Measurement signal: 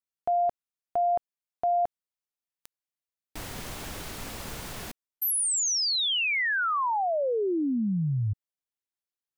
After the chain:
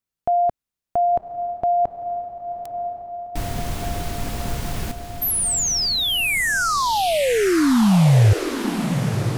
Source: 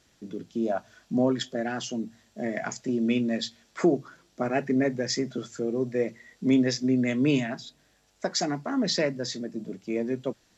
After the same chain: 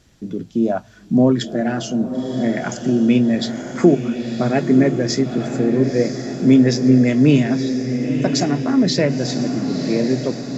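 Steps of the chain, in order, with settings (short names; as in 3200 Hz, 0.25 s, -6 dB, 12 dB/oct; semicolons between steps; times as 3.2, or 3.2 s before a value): low shelf 250 Hz +11.5 dB; on a send: diffused feedback echo 1.003 s, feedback 59%, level -8 dB; on the sum: gain +5 dB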